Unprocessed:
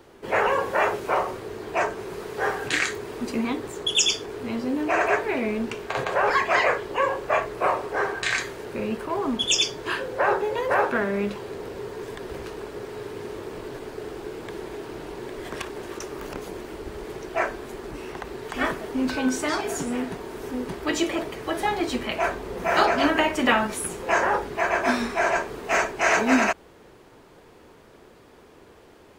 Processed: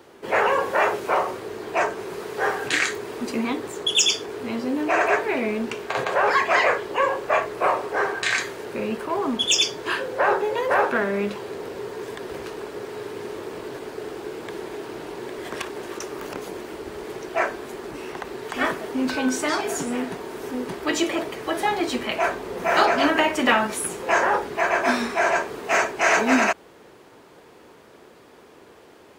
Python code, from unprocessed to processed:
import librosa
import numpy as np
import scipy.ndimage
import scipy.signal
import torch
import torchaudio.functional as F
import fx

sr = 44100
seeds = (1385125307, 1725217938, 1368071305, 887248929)

p1 = fx.highpass(x, sr, hz=190.0, slope=6)
p2 = 10.0 ** (-18.0 / 20.0) * np.tanh(p1 / 10.0 ** (-18.0 / 20.0))
y = p1 + (p2 * librosa.db_to_amplitude(-8.5))